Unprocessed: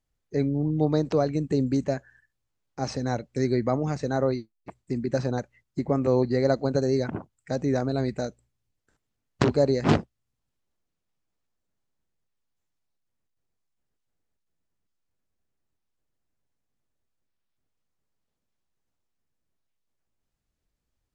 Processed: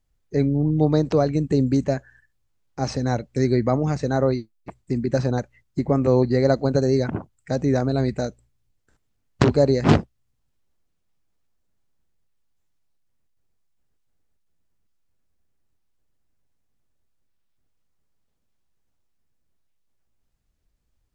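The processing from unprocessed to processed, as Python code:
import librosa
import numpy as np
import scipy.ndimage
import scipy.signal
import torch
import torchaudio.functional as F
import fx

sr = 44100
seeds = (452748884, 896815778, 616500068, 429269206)

y = fx.low_shelf(x, sr, hz=96.0, db=7.5)
y = y * 10.0 ** (3.5 / 20.0)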